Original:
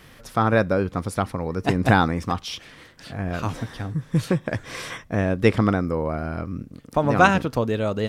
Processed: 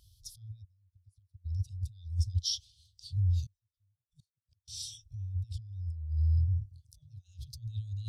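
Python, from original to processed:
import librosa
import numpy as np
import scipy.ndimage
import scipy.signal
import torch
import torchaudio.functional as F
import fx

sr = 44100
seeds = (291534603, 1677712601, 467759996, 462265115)

y = fx.gate_flip(x, sr, shuts_db=-17.0, range_db=-30, at=(0.62, 1.44), fade=0.02)
y = scipy.signal.sosfilt(scipy.signal.butter(2, 57.0, 'highpass', fs=sr, output='sos'), y)
y = fx.over_compress(y, sr, threshold_db=-28.0, ratio=-1.0)
y = scipy.signal.sosfilt(scipy.signal.cheby2(4, 40, [180.0, 2100.0], 'bandstop', fs=sr, output='sos'), y)
y = fx.gate_flip(y, sr, shuts_db=-36.0, range_db=-32, at=(3.46, 4.68))
y = fx.spectral_expand(y, sr, expansion=1.5)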